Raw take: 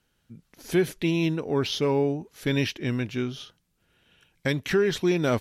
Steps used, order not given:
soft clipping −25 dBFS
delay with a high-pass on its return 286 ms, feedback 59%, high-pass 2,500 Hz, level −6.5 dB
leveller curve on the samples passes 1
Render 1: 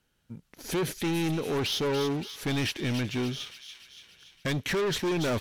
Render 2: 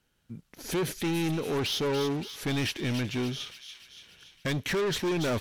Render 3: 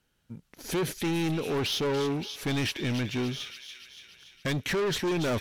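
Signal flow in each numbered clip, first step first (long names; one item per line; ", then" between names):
leveller curve on the samples, then soft clipping, then delay with a high-pass on its return
soft clipping, then leveller curve on the samples, then delay with a high-pass on its return
leveller curve on the samples, then delay with a high-pass on its return, then soft clipping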